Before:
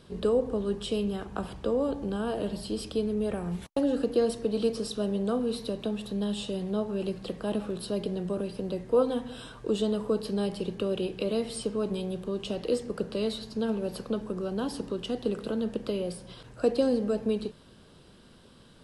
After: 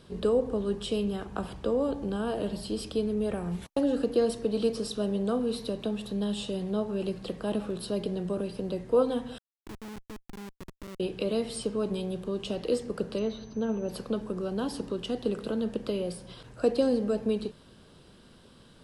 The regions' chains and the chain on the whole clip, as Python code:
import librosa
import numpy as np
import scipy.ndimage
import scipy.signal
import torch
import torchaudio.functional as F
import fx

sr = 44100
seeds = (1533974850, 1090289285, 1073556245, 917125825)

y = fx.chain(x, sr, fx.formant_cascade(vowel='u'),
    fx.schmitt(flips_db=-36.5), at=(9.38, 11.0))
y = fx.dmg_tone(y, sr, hz=6100.0, level_db=-37.0, at=(13.18, 13.88), fade=0.02)
y = fx.air_absorb(y, sr, metres=350.0, at=(13.18, 13.88), fade=0.02)